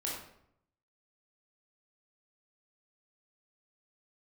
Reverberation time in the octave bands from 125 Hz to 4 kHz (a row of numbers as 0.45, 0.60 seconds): 0.95, 0.85, 0.75, 0.70, 0.60, 0.50 seconds